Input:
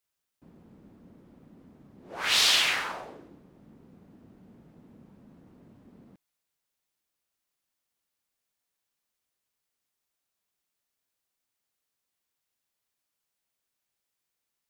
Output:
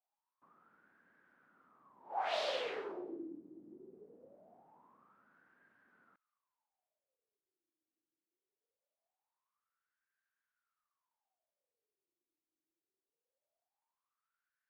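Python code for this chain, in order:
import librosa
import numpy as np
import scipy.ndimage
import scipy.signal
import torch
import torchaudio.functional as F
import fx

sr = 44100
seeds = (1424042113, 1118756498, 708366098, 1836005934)

y = fx.dynamic_eq(x, sr, hz=3800.0, q=1.0, threshold_db=-36.0, ratio=4.0, max_db=5)
y = fx.wah_lfo(y, sr, hz=0.22, low_hz=320.0, high_hz=1600.0, q=12.0)
y = y * 10.0 ** (12.5 / 20.0)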